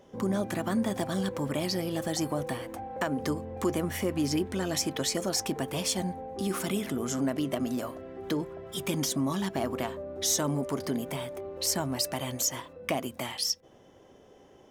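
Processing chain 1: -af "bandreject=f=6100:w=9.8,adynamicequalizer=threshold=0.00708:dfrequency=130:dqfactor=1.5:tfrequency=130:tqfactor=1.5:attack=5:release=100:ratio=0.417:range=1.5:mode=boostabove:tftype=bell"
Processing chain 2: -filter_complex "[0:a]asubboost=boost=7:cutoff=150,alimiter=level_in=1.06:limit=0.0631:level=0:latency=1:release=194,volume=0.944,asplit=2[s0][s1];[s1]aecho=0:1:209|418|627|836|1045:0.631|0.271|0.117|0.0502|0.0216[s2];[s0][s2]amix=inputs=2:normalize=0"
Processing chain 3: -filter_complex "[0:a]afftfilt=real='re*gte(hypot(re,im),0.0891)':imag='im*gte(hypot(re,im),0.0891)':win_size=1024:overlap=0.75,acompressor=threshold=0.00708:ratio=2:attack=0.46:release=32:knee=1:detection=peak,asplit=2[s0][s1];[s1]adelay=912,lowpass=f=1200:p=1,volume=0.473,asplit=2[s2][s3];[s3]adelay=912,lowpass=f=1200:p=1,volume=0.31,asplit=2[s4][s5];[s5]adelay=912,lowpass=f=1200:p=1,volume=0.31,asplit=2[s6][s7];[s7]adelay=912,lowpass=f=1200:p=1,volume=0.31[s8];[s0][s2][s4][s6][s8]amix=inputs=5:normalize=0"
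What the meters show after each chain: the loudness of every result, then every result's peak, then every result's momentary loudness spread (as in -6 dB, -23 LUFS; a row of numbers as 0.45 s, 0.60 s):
-30.5 LUFS, -32.5 LUFS, -41.0 LUFS; -14.5 dBFS, -19.0 dBFS, -28.0 dBFS; 6 LU, 5 LU, 5 LU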